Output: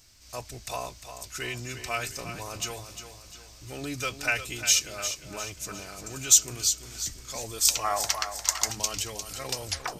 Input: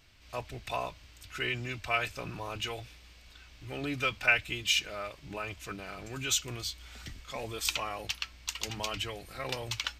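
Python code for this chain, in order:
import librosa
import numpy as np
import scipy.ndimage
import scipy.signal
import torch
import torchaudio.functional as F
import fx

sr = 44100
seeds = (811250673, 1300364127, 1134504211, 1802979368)

y = fx.tape_stop_end(x, sr, length_s=0.34)
y = fx.high_shelf_res(y, sr, hz=4300.0, db=11.5, q=1.5)
y = fx.echo_feedback(y, sr, ms=352, feedback_pct=44, wet_db=-10)
y = fx.spec_box(y, sr, start_s=7.84, length_s=0.87, low_hz=560.0, high_hz=2200.0, gain_db=12)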